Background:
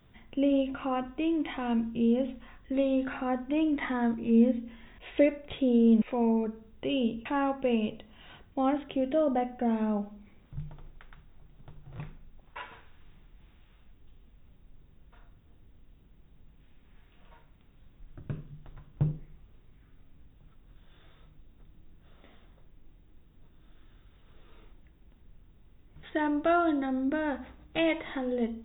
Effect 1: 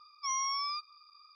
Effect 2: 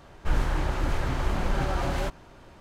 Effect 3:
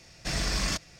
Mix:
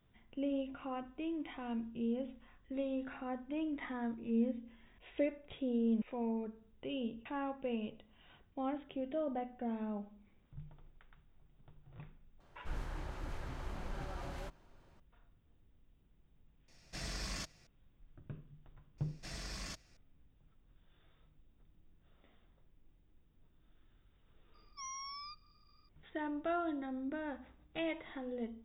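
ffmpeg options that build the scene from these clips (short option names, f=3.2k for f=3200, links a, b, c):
-filter_complex "[3:a]asplit=2[a][b];[0:a]volume=-11dB[c];[2:a]atrim=end=2.6,asetpts=PTS-STARTPTS,volume=-16.5dB,afade=t=in:d=0.004:c=hsin,afade=t=out:st=2.596:d=0.004:c=hsin,adelay=12400[d];[a]atrim=end=0.99,asetpts=PTS-STARTPTS,volume=-13dB,afade=t=in:d=0.004:c=hsin,afade=t=out:st=0.986:d=0.004:c=hsin,adelay=735588S[e];[b]atrim=end=0.99,asetpts=PTS-STARTPTS,volume=-16dB,afade=t=in:d=0.004:c=hsin,afade=t=out:st=0.986:d=0.004:c=hsin,adelay=18980[f];[1:a]atrim=end=1.35,asetpts=PTS-STARTPTS,volume=-12.5dB,afade=t=in:d=0.004:c=hsin,afade=t=out:st=1.346:d=0.004:c=hsin,adelay=24540[g];[c][d][e][f][g]amix=inputs=5:normalize=0"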